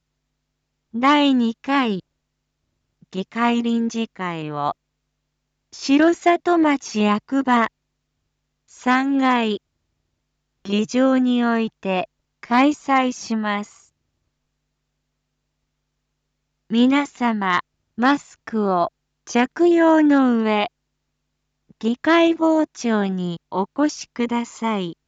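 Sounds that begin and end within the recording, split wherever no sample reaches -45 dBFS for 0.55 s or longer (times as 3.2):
0.94–2
3.02–4.72
5.73–7.68
8.7–9.57
10.65–13.84
16.7–20.68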